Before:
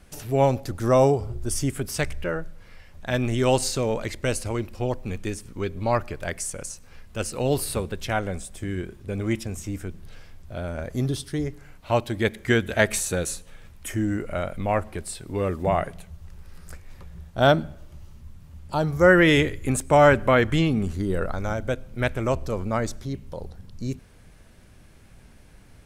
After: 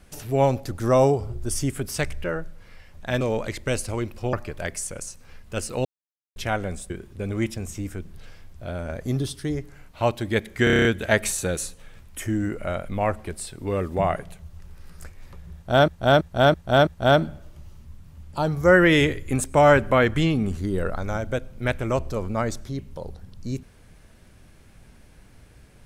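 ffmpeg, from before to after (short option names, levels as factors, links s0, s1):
-filter_complex "[0:a]asplit=17[s0][s1][s2][s3][s4][s5][s6][s7][s8][s9][s10][s11][s12][s13][s14][s15][s16];[s0]atrim=end=3.212[s17];[s1]atrim=start=3.778:end=4.902[s18];[s2]atrim=start=5.958:end=7.48,asetpts=PTS-STARTPTS,afade=t=out:st=1.518:d=0.004:c=hsin[s19];[s3]atrim=start=7.48:end=7.99,asetpts=PTS-STARTPTS,volume=0[s20];[s4]atrim=start=7.99:end=8.532,asetpts=PTS-STARTPTS,afade=t=in:d=0.004:c=hsin[s21];[s5]atrim=start=8.788:end=12.562[s22];[s6]atrim=start=12.528:end=12.562[s23];[s7]atrim=start=12.528:end=12.562[s24];[s8]atrim=start=12.528:end=12.562[s25];[s9]atrim=start=12.528:end=12.562[s26];[s10]atrim=start=12.528:end=12.562[s27];[s11]atrim=start=12.528:end=12.562[s28];[s12]atrim=start=12.528:end=17.562[s29];[s13]atrim=start=17.228:end=17.562[s30];[s14]atrim=start=17.228:end=17.562[s31];[s15]atrim=start=17.228:end=17.562[s32];[s16]atrim=start=17.228[s33];[s17][s18]acrossfade=d=0.004:c1=hsin:c2=hsin[s34];[s19][s20][s21]concat=n=3:v=0:a=1[s35];[s34][s35]acrossfade=d=0.004:c1=hsin:c2=hsin[s36];[s36][s22]acrossfade=d=0.004:c1=hsin:c2=hsin[s37];[s37][s23]acrossfade=d=0.004:c1=hsin:c2=hsin[s38];[s38][s24]acrossfade=d=0.004:c1=hsin:c2=hsin[s39];[s39][s25]acrossfade=d=0.004:c1=hsin:c2=hsin[s40];[s40][s26]acrossfade=d=0.004:c1=hsin:c2=hsin[s41];[s41][s27]acrossfade=d=0.004:c1=hsin:c2=hsin[s42];[s42][s28]acrossfade=d=0.004:c1=hsin:c2=hsin[s43];[s43][s29]acrossfade=d=0.004:c1=hsin:c2=hsin[s44];[s44][s30]acrossfade=d=0.004:c1=hsin:c2=hsin[s45];[s45][s31]acrossfade=d=0.004:c1=hsin:c2=hsin[s46];[s46][s32]acrossfade=d=0.004:c1=hsin:c2=hsin[s47];[s47][s33]acrossfade=d=0.004:c1=hsin:c2=hsin"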